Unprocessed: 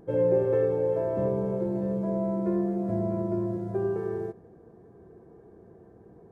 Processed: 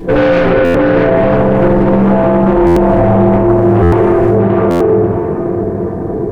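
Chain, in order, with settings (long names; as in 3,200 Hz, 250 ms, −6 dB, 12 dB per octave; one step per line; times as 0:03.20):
parametric band 790 Hz −3 dB 0.25 octaves
soft clipping −29.5 dBFS, distortion −9 dB
0:00.47–0:01.16: high-frequency loss of the air 210 metres
tape delay 639 ms, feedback 52%, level −3 dB, low-pass 1,300 Hz
rectangular room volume 96 cubic metres, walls mixed, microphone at 3.4 metres
boost into a limiter +19 dB
buffer that repeats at 0:00.64/0:02.66/0:03.82/0:04.70, samples 512, times 8
highs frequency-modulated by the lows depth 0.36 ms
level −1 dB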